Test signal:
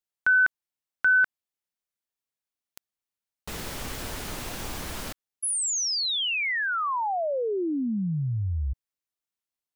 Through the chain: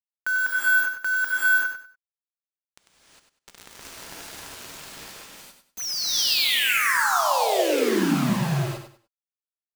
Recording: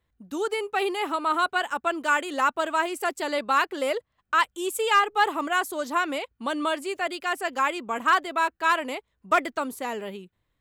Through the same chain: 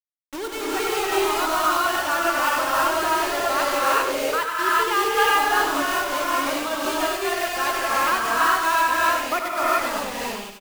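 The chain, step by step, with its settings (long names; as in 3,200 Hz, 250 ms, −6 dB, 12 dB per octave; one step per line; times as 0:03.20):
one scale factor per block 5 bits
elliptic band-pass filter 130–5,600 Hz, stop band 40 dB
bit reduction 5 bits
on a send: repeating echo 97 ms, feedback 25%, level −8 dB
on the sum: reverb whose tail is shaped and stops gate 430 ms rising, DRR −6.5 dB
level −4 dB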